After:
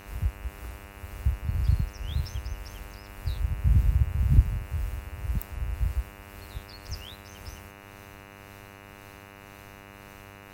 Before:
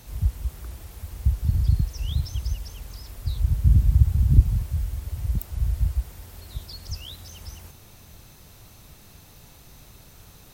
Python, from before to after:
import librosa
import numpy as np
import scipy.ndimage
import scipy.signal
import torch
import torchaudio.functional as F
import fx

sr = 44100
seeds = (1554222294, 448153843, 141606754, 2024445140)

y = fx.tremolo_shape(x, sr, shape='triangle', hz=1.9, depth_pct=50)
y = fx.dmg_buzz(y, sr, base_hz=100.0, harmonics=29, level_db=-45.0, tilt_db=-2, odd_only=False)
y = F.gain(torch.from_numpy(y), -3.0).numpy()